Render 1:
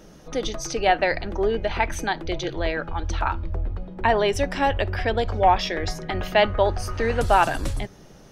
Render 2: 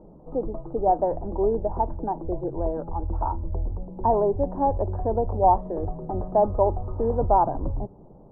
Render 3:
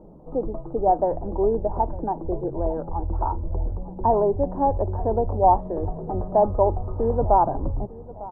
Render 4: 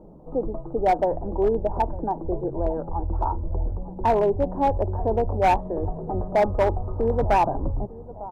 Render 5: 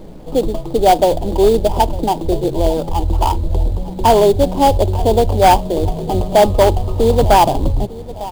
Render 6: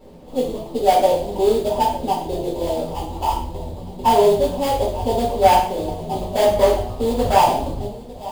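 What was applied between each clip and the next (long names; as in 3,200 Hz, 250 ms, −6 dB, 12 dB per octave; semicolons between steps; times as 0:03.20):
elliptic low-pass filter 960 Hz, stop band 60 dB
repeating echo 902 ms, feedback 36%, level −19 dB; level +1.5 dB
hard clipping −14 dBFS, distortion −15 dB
in parallel at −3 dB: sample-rate reduction 4,000 Hz, jitter 20%; on the sum: background noise brown −45 dBFS; level +5.5 dB
low-shelf EQ 110 Hz −8 dB; coupled-rooms reverb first 0.51 s, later 1.8 s, from −26 dB, DRR −10 dB; level −14.5 dB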